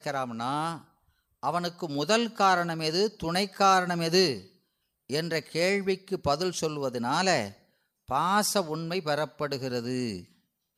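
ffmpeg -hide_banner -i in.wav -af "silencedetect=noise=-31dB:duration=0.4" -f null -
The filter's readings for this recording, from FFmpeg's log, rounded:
silence_start: 0.75
silence_end: 1.43 | silence_duration: 0.68
silence_start: 4.37
silence_end: 5.10 | silence_duration: 0.72
silence_start: 7.48
silence_end: 8.11 | silence_duration: 0.63
silence_start: 10.19
silence_end: 10.78 | silence_duration: 0.58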